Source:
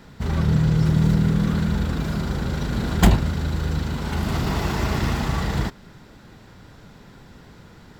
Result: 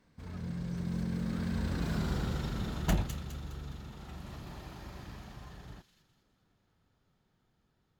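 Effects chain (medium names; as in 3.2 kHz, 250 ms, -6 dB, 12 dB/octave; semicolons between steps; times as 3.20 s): Doppler pass-by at 2.06 s, 35 m/s, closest 15 m; on a send: feedback echo behind a high-pass 206 ms, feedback 40%, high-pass 3.2 kHz, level -5 dB; on the sum: trim -7.5 dB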